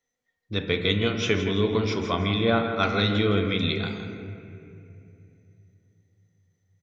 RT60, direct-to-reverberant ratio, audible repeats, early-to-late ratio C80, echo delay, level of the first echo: 2.7 s, 4.5 dB, 2, 6.0 dB, 0.164 s, -10.0 dB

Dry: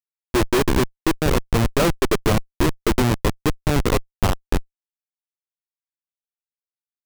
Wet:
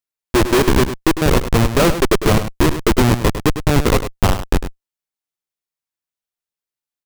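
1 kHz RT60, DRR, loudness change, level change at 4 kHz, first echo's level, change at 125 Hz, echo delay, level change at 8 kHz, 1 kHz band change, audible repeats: none, none, +5.0 dB, +5.0 dB, -10.5 dB, +5.0 dB, 0.102 s, +5.0 dB, +5.0 dB, 1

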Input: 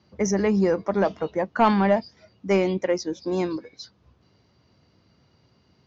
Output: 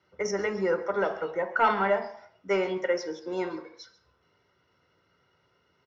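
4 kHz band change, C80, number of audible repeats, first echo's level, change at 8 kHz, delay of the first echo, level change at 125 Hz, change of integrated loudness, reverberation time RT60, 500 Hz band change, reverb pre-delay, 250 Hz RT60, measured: -4.0 dB, 14.5 dB, 1, -18.0 dB, n/a, 0.137 s, -14.0 dB, -4.5 dB, 0.60 s, -4.0 dB, 3 ms, 0.50 s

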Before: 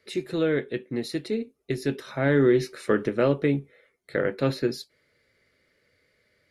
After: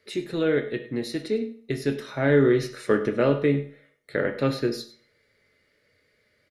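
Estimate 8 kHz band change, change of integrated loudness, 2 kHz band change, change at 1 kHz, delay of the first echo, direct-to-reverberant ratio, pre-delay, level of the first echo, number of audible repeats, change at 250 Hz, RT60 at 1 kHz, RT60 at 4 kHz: n/a, +1.0 dB, +1.0 dB, +1.0 dB, 0.1 s, 5.5 dB, 5 ms, -16.5 dB, 1, +0.5 dB, 0.50 s, 0.40 s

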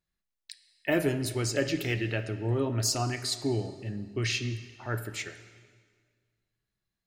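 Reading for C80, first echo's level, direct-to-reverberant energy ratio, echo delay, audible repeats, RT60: 13.0 dB, none, 11.0 dB, none, none, 1.7 s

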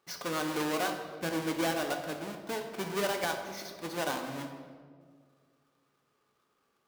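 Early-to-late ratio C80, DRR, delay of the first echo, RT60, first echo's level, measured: 8.0 dB, 4.0 dB, none, 1.9 s, none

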